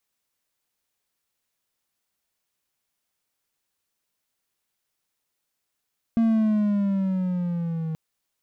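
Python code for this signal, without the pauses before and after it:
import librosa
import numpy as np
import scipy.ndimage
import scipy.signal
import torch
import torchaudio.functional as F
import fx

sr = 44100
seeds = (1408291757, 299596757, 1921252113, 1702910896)

y = fx.riser_tone(sr, length_s=1.78, level_db=-14.5, wave='triangle', hz=230.0, rise_st=-6.5, swell_db=-9.5)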